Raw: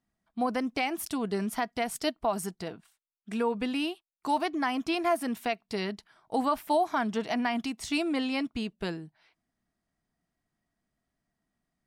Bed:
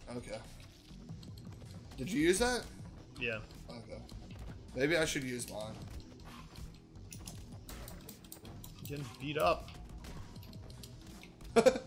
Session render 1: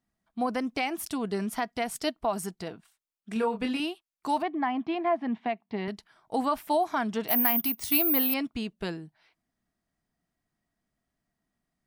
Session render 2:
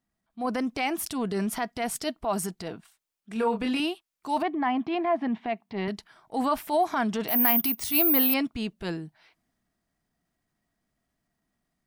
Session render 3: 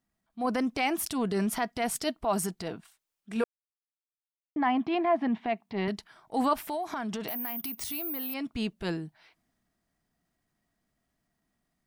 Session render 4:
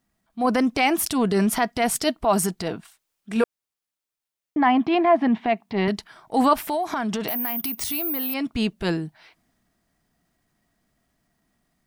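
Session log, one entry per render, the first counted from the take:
3.33–3.8 doubler 27 ms -5 dB; 4.42–5.88 speaker cabinet 130–2900 Hz, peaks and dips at 220 Hz +4 dB, 490 Hz -6 dB, 820 Hz +5 dB, 1400 Hz -8 dB, 2600 Hz -6 dB; 7.28–8.34 careless resampling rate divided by 3×, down filtered, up zero stuff
transient shaper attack -8 dB, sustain +2 dB; AGC gain up to 3.5 dB
3.44–4.56 mute; 6.53–8.57 compressor, threshold -30 dBFS
gain +8 dB

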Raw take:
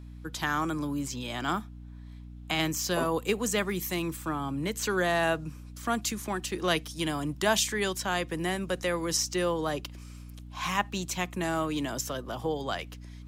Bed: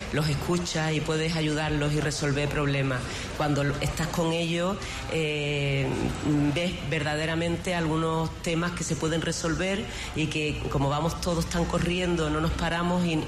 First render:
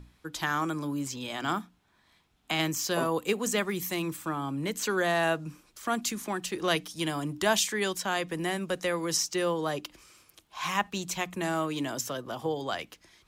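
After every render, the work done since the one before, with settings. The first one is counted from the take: notches 60/120/180/240/300 Hz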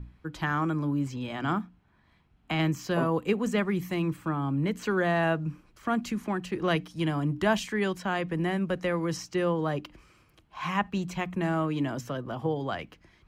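tone controls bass +9 dB, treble -15 dB; notch 3600 Hz, Q 14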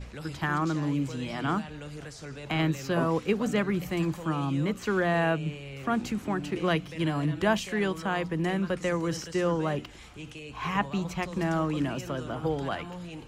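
add bed -15 dB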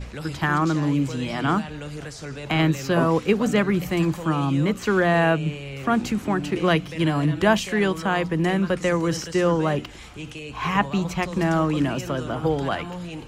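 gain +6.5 dB

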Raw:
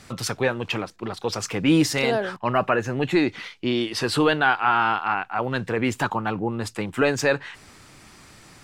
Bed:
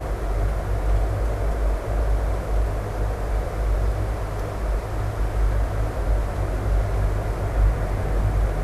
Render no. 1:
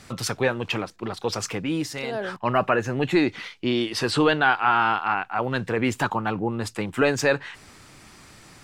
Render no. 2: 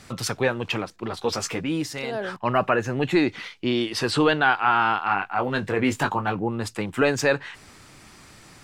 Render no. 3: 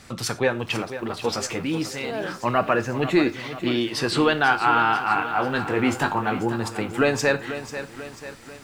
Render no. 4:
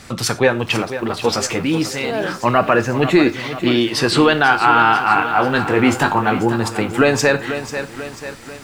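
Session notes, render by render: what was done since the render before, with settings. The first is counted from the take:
1.49–2.31 dip -8.5 dB, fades 0.19 s; 4.11–4.52 LPF 8600 Hz 24 dB/oct
1.09–1.65 doubler 13 ms -5 dB; 5.06–6.35 doubler 20 ms -7 dB
non-linear reverb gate 0.13 s falling, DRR 11 dB; lo-fi delay 0.491 s, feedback 55%, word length 8-bit, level -11.5 dB
gain +7.5 dB; limiter -2 dBFS, peak gain reduction 3 dB

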